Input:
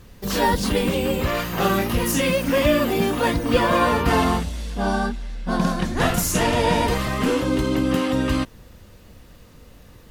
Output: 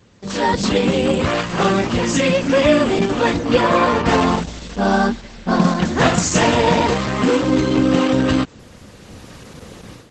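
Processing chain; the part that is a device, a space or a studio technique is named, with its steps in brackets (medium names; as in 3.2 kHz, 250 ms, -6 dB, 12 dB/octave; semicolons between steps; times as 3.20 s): video call (high-pass 100 Hz 12 dB/octave; level rider gain up to 15 dB; trim -1 dB; Opus 12 kbps 48 kHz)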